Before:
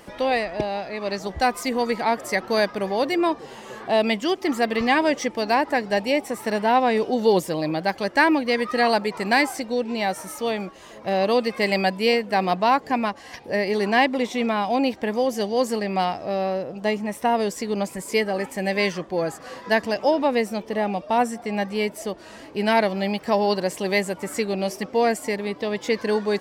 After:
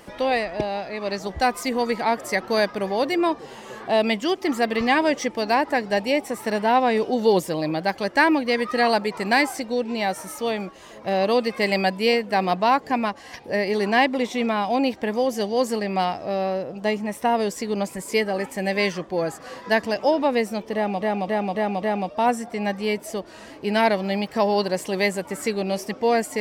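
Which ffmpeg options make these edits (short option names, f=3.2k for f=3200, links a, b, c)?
-filter_complex "[0:a]asplit=5[a][b][c][d][e];[a]atrim=end=21.012[f];[b]atrim=start=20.738:end=21.012[g];[c]atrim=start=20.738:end=21.012[h];[d]atrim=start=20.738:end=21.012[i];[e]atrim=start=20.738[j];[f][g]acrossfade=d=0.004:c1=hsin:c2=hsin[k];[k][h]acrossfade=d=0.004:c1=hsin:c2=hsin[l];[l][i]acrossfade=d=0.004:c1=hsin:c2=hsin[m];[m][j]acrossfade=d=0.004:c1=hsin:c2=hsin"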